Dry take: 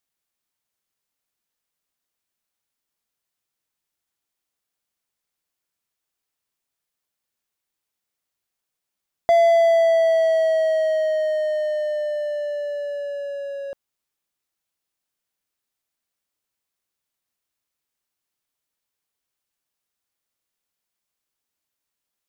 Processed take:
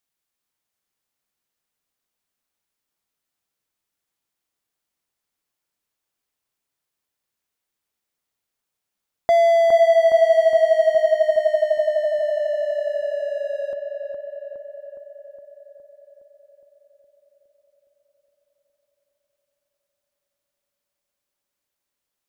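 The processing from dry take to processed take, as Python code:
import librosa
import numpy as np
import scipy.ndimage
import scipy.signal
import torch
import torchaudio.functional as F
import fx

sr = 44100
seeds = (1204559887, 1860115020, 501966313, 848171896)

y = fx.echo_filtered(x, sr, ms=414, feedback_pct=68, hz=2000.0, wet_db=-3.5)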